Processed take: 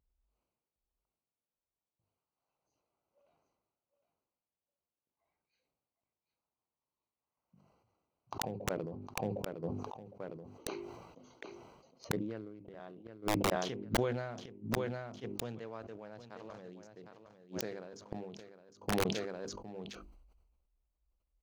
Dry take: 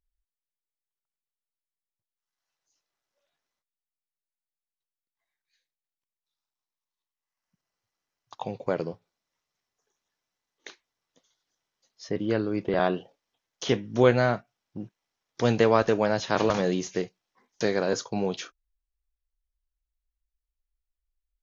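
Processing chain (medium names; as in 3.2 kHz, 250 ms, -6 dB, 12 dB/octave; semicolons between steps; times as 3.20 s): local Wiener filter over 25 samples; high-pass 52 Hz 12 dB/octave; bass shelf 86 Hz +3 dB; hum notches 50/100/150/200/250/300/350/400 Hz; feedback delay 759 ms, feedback 17%, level -10 dB; inverted gate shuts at -26 dBFS, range -34 dB; integer overflow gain 31 dB; decay stretcher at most 42 dB/s; trim +8 dB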